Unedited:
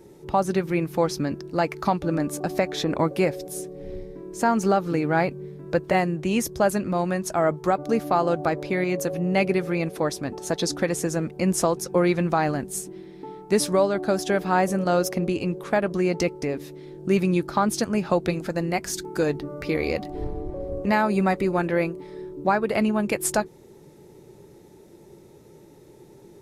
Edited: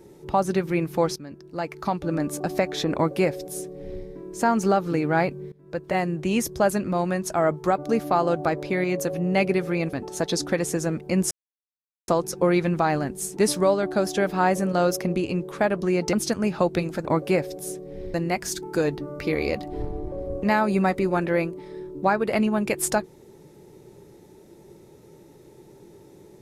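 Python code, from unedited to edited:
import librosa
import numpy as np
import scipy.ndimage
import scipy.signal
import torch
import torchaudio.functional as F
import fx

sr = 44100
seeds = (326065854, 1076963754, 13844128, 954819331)

y = fx.edit(x, sr, fx.fade_in_from(start_s=1.16, length_s=1.16, floor_db=-16.5),
    fx.duplicate(start_s=2.94, length_s=1.09, to_s=18.56),
    fx.fade_in_from(start_s=5.52, length_s=0.66, floor_db=-20.0),
    fx.cut(start_s=9.93, length_s=0.3),
    fx.insert_silence(at_s=11.61, length_s=0.77),
    fx.cut(start_s=12.9, length_s=0.59),
    fx.cut(start_s=16.25, length_s=1.39), tone=tone)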